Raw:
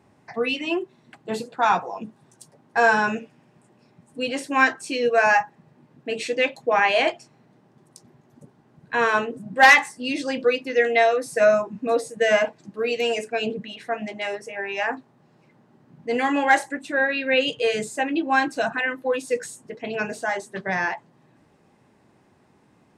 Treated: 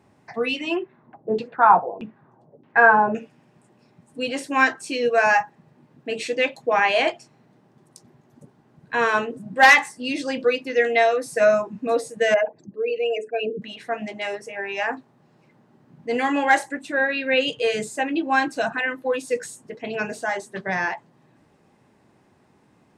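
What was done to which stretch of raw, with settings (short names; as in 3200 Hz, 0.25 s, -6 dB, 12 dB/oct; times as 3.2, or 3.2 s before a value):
0.76–3.15 LFO low-pass saw down 1.6 Hz 370–3100 Hz
12.34–13.62 formant sharpening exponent 2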